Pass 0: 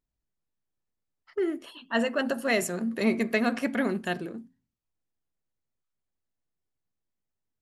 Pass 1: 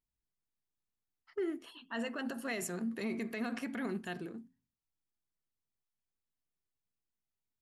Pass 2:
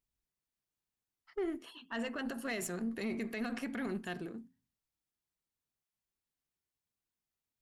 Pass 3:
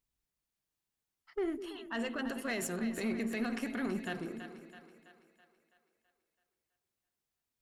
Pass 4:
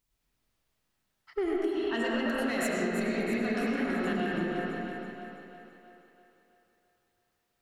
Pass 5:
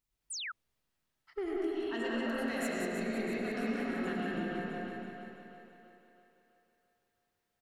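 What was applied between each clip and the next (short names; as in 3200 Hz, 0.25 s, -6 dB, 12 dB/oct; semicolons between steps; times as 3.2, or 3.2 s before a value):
limiter -21.5 dBFS, peak gain reduction 10.5 dB; bell 570 Hz -8.5 dB 0.25 oct; gain -6.5 dB
one diode to ground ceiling -31 dBFS; gain +1 dB
split-band echo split 470 Hz, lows 0.204 s, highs 0.329 s, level -10 dB; gain +1.5 dB
reverb RT60 2.5 s, pre-delay 60 ms, DRR -6.5 dB; compressor 6:1, threshold -32 dBFS, peak gain reduction 8.5 dB; gain +5.5 dB
on a send: echo 0.184 s -5 dB; on the sum: painted sound fall, 0.3–0.52, 1200–10000 Hz -33 dBFS; gain -6.5 dB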